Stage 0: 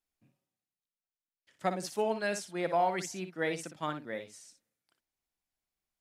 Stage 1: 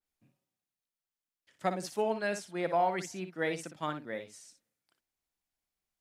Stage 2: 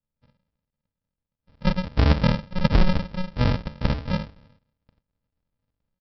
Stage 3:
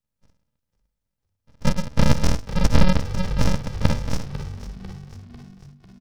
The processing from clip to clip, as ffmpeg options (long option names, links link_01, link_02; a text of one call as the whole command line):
ffmpeg -i in.wav -af "adynamicequalizer=threshold=0.00355:dfrequency=3100:dqfactor=0.7:tfrequency=3100:tqfactor=0.7:attack=5:release=100:ratio=0.375:range=2.5:mode=cutabove:tftype=highshelf" out.wav
ffmpeg -i in.wav -af "dynaudnorm=framelen=220:gausssize=3:maxgain=6dB,aresample=11025,acrusher=samples=30:mix=1:aa=0.000001,aresample=44100,volume=6.5dB" out.wav
ffmpeg -i in.wav -filter_complex "[0:a]aeval=exprs='abs(val(0))':channel_layout=same,asplit=6[link_01][link_02][link_03][link_04][link_05][link_06];[link_02]adelay=497,afreqshift=-48,volume=-13.5dB[link_07];[link_03]adelay=994,afreqshift=-96,volume=-18.9dB[link_08];[link_04]adelay=1491,afreqshift=-144,volume=-24.2dB[link_09];[link_05]adelay=1988,afreqshift=-192,volume=-29.6dB[link_10];[link_06]adelay=2485,afreqshift=-240,volume=-34.9dB[link_11];[link_01][link_07][link_08][link_09][link_10][link_11]amix=inputs=6:normalize=0,volume=4dB" out.wav